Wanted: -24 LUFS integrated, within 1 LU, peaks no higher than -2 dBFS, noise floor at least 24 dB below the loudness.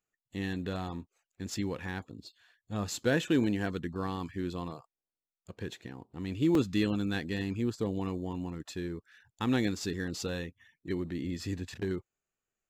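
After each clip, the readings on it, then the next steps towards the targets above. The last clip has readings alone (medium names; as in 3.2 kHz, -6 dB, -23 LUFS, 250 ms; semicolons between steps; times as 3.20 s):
dropouts 1; longest dropout 2.5 ms; loudness -34.0 LUFS; peak level -16.0 dBFS; loudness target -24.0 LUFS
-> interpolate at 6.55 s, 2.5 ms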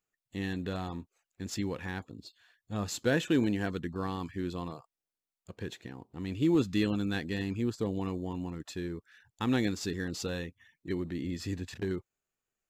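dropouts 0; loudness -34.0 LUFS; peak level -16.0 dBFS; loudness target -24.0 LUFS
-> trim +10 dB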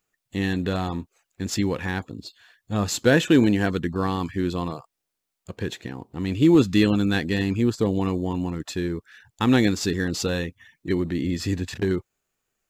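loudness -24.0 LUFS; peak level -6.0 dBFS; noise floor -82 dBFS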